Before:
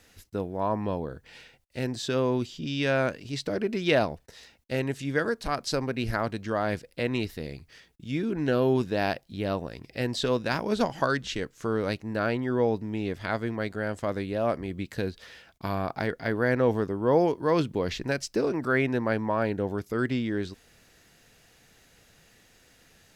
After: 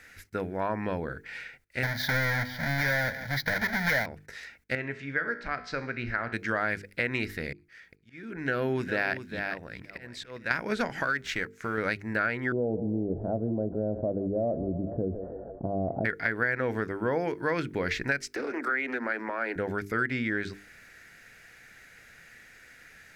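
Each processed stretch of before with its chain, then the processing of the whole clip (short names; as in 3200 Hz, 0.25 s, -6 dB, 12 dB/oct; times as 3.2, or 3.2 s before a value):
1.83–4.06 half-waves squared off + fixed phaser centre 1800 Hz, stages 8 + echo 0.166 s -18 dB
4.75–6.33 air absorption 150 m + resonator 60 Hz, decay 0.7 s
7.52–10.51 auto swell 0.649 s + echo 0.405 s -11 dB
11.02–11.78 G.711 law mismatch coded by A + compressor 2:1, threshold -29 dBFS
12.52–16.05 elliptic low-pass 670 Hz, stop band 70 dB + thinning echo 0.157 s, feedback 71%, level -17 dB + fast leveller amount 50%
18.27–19.56 steep high-pass 230 Hz 96 dB/oct + compressor, threshold -29 dBFS + Doppler distortion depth 0.14 ms
whole clip: band shelf 1800 Hz +12.5 dB 1 oct; notches 50/100/150/200/250/300/350/400/450 Hz; compressor 4:1, threshold -25 dBFS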